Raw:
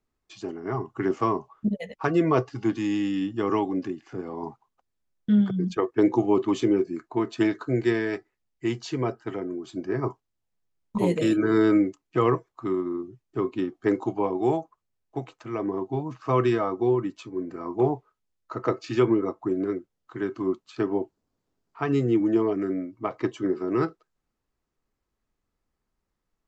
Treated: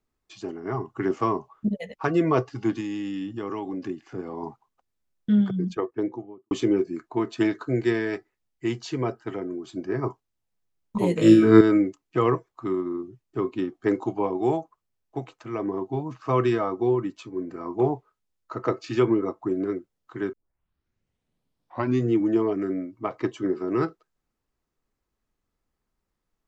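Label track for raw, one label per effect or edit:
2.800000	3.840000	compression 4:1, threshold -28 dBFS
5.470000	6.510000	studio fade out
11.160000	11.610000	flutter echo walls apart 3.1 m, dies away in 0.51 s
20.330000	20.330000	tape start 1.78 s

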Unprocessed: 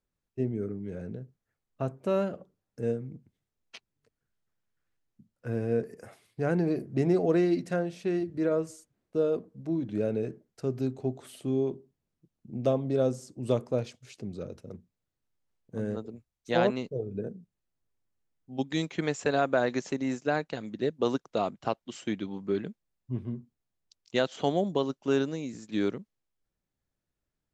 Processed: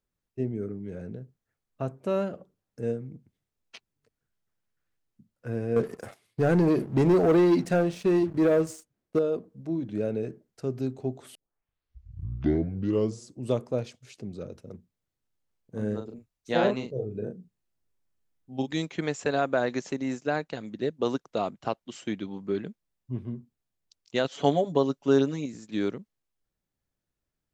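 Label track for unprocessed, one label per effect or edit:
5.760000	9.190000	waveshaping leveller passes 2
11.350000	11.350000	tape start 2.02 s
15.760000	18.710000	doubling 38 ms -5 dB
24.240000	25.460000	comb 7.1 ms, depth 81%

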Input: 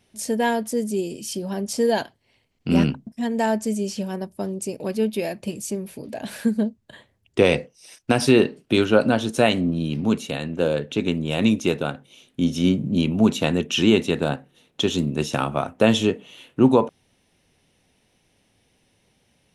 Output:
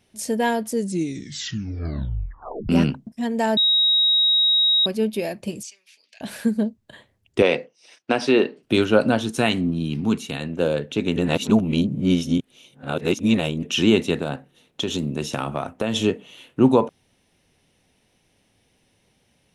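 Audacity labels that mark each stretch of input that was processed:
0.710000	0.710000	tape stop 1.98 s
3.570000	4.860000	bleep 3.8 kHz -14.5 dBFS
5.630000	6.210000	Chebyshev band-pass 2.4–6 kHz
7.420000	8.630000	band-pass 270–4400 Hz
9.220000	10.410000	peaking EQ 560 Hz -10.5 dB 0.41 oct
11.160000	13.630000	reverse
14.190000	15.960000	compression 4:1, threshold -20 dBFS

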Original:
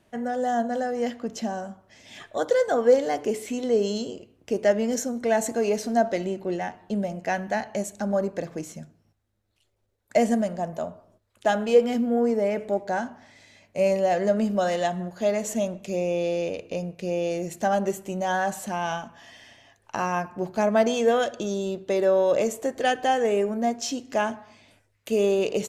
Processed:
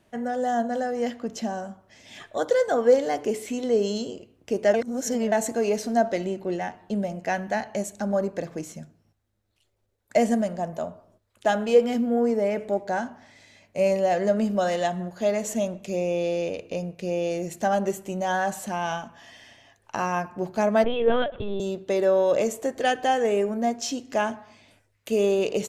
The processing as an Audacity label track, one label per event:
4.740000	5.320000	reverse
20.840000	21.600000	LPC vocoder at 8 kHz pitch kept

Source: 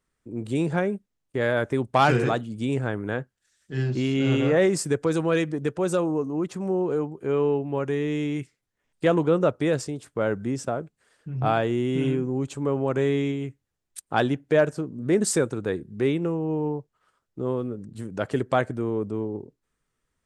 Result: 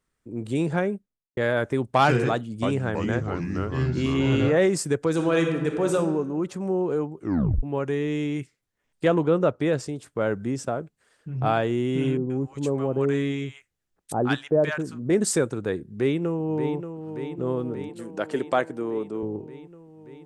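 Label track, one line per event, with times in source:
0.840000	1.370000	studio fade out
2.300000	4.490000	ever faster or slower copies 323 ms, each echo -3 st, echoes 3
5.110000	5.940000	reverb throw, RT60 1.3 s, DRR 3 dB
7.180000	7.180000	tape stop 0.45 s
9.080000	9.840000	treble shelf 6.7 kHz -8 dB
12.170000	15.100000	bands offset in time lows, highs 130 ms, split 930 Hz
15.800000	16.770000	echo throw 580 ms, feedback 75%, level -9 dB
17.890000	19.230000	high-pass 250 Hz

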